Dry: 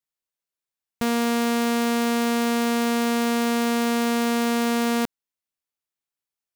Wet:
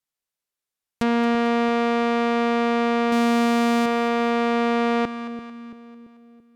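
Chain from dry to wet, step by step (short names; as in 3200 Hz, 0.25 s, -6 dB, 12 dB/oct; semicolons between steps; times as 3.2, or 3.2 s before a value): treble ducked by the level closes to 2700 Hz, closed at -22.5 dBFS; 3.12–3.86 sample leveller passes 2; split-band echo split 540 Hz, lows 0.337 s, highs 0.223 s, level -11 dB; gain +2.5 dB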